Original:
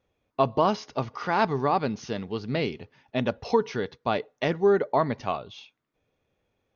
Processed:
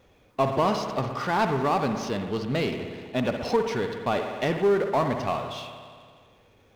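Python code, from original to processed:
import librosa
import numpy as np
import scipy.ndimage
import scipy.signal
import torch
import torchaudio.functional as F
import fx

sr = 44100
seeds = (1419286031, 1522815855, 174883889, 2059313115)

y = fx.rev_spring(x, sr, rt60_s=1.4, pass_ms=(59,), chirp_ms=35, drr_db=8.0)
y = fx.power_curve(y, sr, exponent=0.7)
y = y * 10.0 ** (-3.5 / 20.0)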